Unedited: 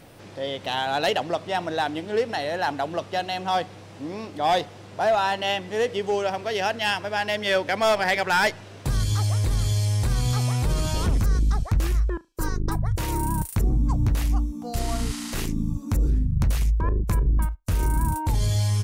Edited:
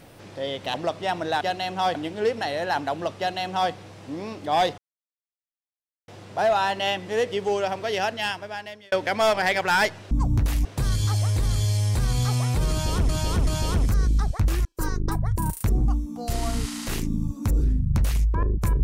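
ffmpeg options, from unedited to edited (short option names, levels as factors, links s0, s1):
-filter_complex "[0:a]asplit=13[s0][s1][s2][s3][s4][s5][s6][s7][s8][s9][s10][s11][s12];[s0]atrim=end=0.742[s13];[s1]atrim=start=1.198:end=1.872[s14];[s2]atrim=start=3.098:end=3.642[s15];[s3]atrim=start=1.868:end=4.7,asetpts=PTS-STARTPTS,afade=t=out:st=2.828:d=0.004:c=hsin,apad=pad_dur=1.3[s16];[s4]atrim=start=4.7:end=7.54,asetpts=PTS-STARTPTS,afade=t=in:d=0.004:c=hsin,afade=t=out:st=1.9:d=0.94[s17];[s5]atrim=start=7.54:end=8.732,asetpts=PTS-STARTPTS,afade=t=in:d=0.004:c=hsin[s18];[s6]atrim=start=13.798:end=14.342[s19];[s7]atrim=start=8.728:end=11.172[s20];[s8]atrim=start=10.788:end=11.172[s21];[s9]atrim=start=10.788:end=11.972[s22];[s10]atrim=start=12.248:end=12.982[s23];[s11]atrim=start=13.298:end=13.802[s24];[s12]atrim=start=14.338[s25];[s13][s14]acrossfade=d=0.004:c1=hsin:c2=hsin[s26];[s26][s15]acrossfade=d=0.004:c1=hsin:c2=hsin[s27];[s16][s17][s18]concat=n=3:v=0:a=1[s28];[s27][s28]acrossfade=d=0.004:c1=hsin:c2=hsin[s29];[s29][s19]acrossfade=d=0.004:c1=hsin:c2=hsin[s30];[s30][s20]acrossfade=d=0.004:c1=hsin:c2=hsin[s31];[s31][s21]acrossfade=d=0.004:c1=hsin:c2=hsin[s32];[s32][s22]acrossfade=d=0.004:c1=hsin:c2=hsin[s33];[s33][s23]acrossfade=d=0.004:c1=hsin:c2=hsin[s34];[s34][s24]acrossfade=d=0.004:c1=hsin:c2=hsin[s35];[s35][s25]acrossfade=d=0.004:c1=hsin:c2=hsin"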